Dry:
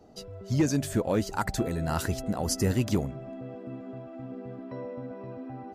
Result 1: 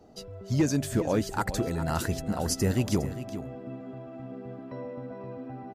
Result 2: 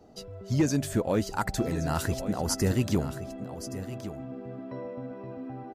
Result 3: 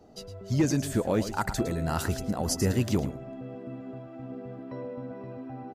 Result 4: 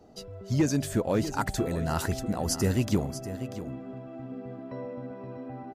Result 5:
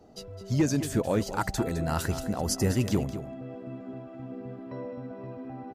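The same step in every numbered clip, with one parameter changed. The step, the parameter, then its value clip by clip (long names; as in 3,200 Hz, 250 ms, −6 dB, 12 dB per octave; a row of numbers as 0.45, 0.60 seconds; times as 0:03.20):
single-tap delay, delay time: 409, 1,121, 110, 640, 210 milliseconds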